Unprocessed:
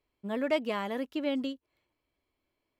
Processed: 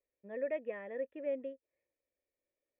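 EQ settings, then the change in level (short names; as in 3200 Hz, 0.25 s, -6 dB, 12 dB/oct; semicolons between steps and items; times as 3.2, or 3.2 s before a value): vocal tract filter e; +2.0 dB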